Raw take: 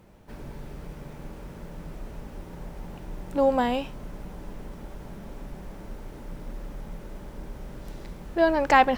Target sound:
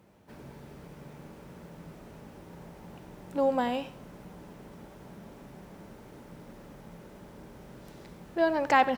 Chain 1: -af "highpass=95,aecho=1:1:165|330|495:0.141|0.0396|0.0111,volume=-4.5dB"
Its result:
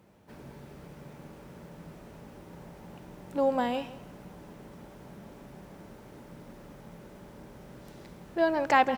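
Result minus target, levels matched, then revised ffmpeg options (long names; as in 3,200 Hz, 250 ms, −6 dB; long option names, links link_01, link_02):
echo 71 ms late
-af "highpass=95,aecho=1:1:94|188|282:0.141|0.0396|0.0111,volume=-4.5dB"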